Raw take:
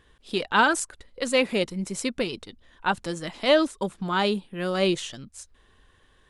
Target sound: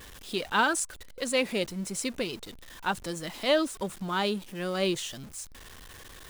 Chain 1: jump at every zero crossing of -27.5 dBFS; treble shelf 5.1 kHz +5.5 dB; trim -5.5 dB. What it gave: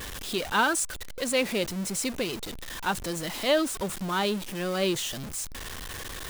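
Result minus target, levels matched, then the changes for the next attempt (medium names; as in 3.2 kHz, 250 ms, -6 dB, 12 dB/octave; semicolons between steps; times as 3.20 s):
jump at every zero crossing: distortion +9 dB
change: jump at every zero crossing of -38 dBFS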